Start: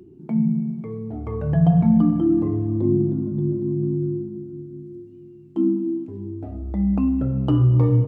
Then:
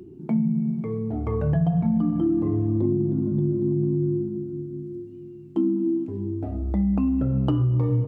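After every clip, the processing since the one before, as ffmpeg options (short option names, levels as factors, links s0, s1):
-af "acompressor=threshold=0.0794:ratio=6,volume=1.41"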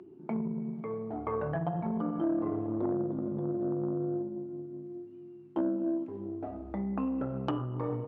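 -af "aeval=exprs='0.316*(cos(1*acos(clip(val(0)/0.316,-1,1)))-cos(1*PI/2))+0.0447*(cos(4*acos(clip(val(0)/0.316,-1,1)))-cos(4*PI/2))+0.0355*(cos(5*acos(clip(val(0)/0.316,-1,1)))-cos(5*PI/2))+0.00891*(cos(6*acos(clip(val(0)/0.316,-1,1)))-cos(6*PI/2))+0.0178*(cos(7*acos(clip(val(0)/0.316,-1,1)))-cos(7*PI/2))':c=same,bandpass=f=1100:t=q:w=0.86:csg=0"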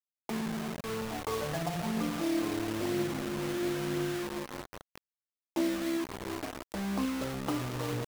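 -af "acrusher=bits=5:mix=0:aa=0.000001,aphaser=in_gain=1:out_gain=1:delay=4:decay=0.22:speed=1:type=triangular,volume=0.841"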